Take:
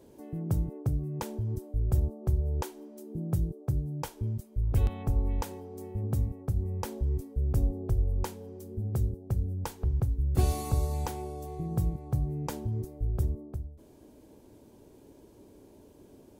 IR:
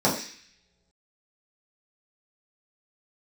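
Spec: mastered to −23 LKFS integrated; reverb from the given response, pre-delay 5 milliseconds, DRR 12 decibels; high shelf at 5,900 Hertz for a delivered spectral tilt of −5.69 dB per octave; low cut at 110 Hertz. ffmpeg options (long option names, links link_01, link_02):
-filter_complex "[0:a]highpass=110,highshelf=frequency=5900:gain=5,asplit=2[link_01][link_02];[1:a]atrim=start_sample=2205,adelay=5[link_03];[link_02][link_03]afir=irnorm=-1:irlink=0,volume=-28dB[link_04];[link_01][link_04]amix=inputs=2:normalize=0,volume=13dB"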